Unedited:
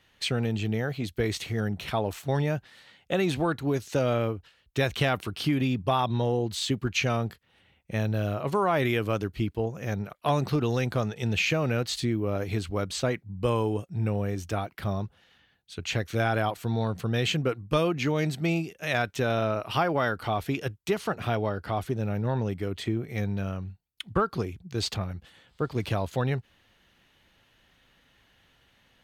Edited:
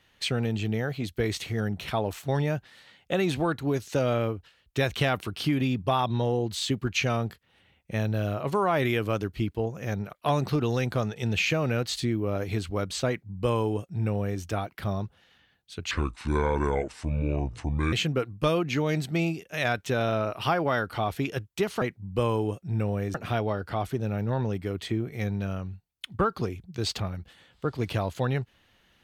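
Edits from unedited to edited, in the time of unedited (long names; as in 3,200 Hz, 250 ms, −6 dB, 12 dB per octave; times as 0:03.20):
0:13.08–0:14.41: duplicate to 0:21.11
0:15.91–0:17.22: play speed 65%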